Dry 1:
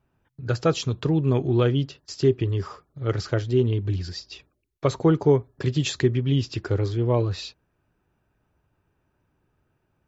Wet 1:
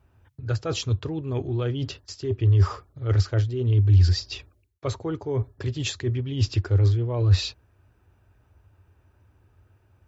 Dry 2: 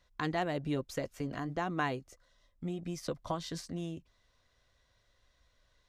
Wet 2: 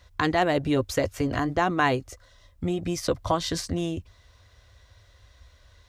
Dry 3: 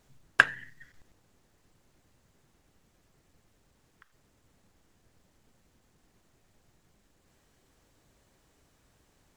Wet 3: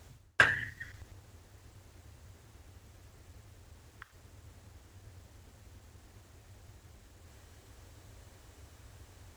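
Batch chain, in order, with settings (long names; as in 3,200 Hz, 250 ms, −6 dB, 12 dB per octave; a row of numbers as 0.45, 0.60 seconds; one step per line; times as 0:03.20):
reversed playback
downward compressor 20 to 1, threshold −29 dBFS
reversed playback
high-pass filter 45 Hz
low shelf with overshoot 120 Hz +6.5 dB, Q 3
normalise the peak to −9 dBFS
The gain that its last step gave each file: +6.0, +13.0, +9.0 decibels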